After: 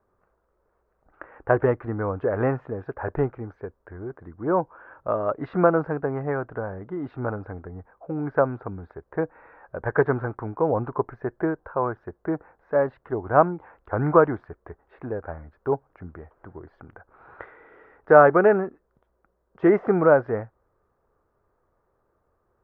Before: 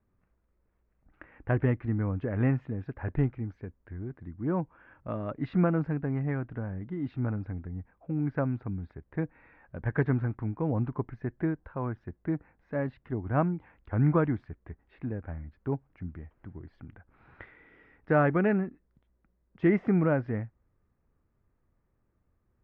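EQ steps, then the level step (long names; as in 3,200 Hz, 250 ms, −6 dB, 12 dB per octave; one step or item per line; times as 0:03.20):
flat-topped bell 760 Hz +14.5 dB 2.4 octaves
−2.0 dB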